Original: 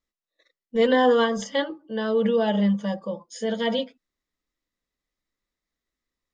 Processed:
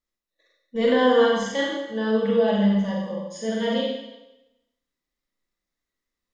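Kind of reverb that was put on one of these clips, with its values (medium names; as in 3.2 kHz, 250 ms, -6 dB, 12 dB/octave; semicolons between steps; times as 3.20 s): Schroeder reverb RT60 0.94 s, combs from 32 ms, DRR -3 dB; trim -4 dB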